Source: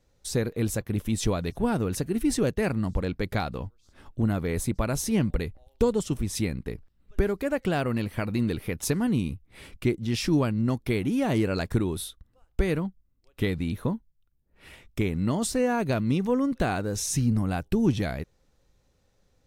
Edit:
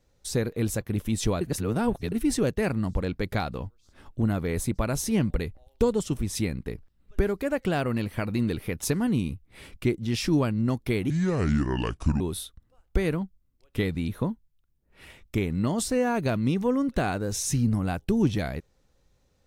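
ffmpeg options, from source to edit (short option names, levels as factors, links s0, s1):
-filter_complex "[0:a]asplit=5[s0][s1][s2][s3][s4];[s0]atrim=end=1.412[s5];[s1]atrim=start=1.408:end=2.122,asetpts=PTS-STARTPTS,areverse[s6];[s2]atrim=start=2.118:end=11.104[s7];[s3]atrim=start=11.1:end=11.84,asetpts=PTS-STARTPTS,asetrate=29547,aresample=44100,atrim=end_sample=48707,asetpts=PTS-STARTPTS[s8];[s4]atrim=start=11.836[s9];[s5][s6]acrossfade=d=0.004:c1=hsin:c2=hsin[s10];[s10][s7]acrossfade=d=0.004:c1=hsin:c2=hsin[s11];[s11][s8]acrossfade=d=0.004:c1=hsin:c2=hsin[s12];[s12][s9]acrossfade=d=0.004:c1=hsin:c2=hsin"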